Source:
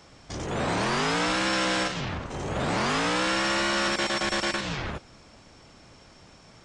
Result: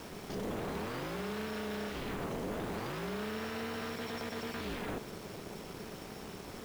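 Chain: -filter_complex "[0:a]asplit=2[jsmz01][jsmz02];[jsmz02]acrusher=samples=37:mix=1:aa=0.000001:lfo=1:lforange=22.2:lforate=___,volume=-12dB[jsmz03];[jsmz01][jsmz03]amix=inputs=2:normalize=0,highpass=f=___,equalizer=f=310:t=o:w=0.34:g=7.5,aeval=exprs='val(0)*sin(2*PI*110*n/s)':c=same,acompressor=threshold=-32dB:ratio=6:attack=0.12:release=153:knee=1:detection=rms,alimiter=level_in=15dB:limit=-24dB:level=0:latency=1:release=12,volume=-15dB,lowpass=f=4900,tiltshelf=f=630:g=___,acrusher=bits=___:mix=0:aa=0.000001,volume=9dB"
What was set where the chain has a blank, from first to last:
1.6, 210, 3, 9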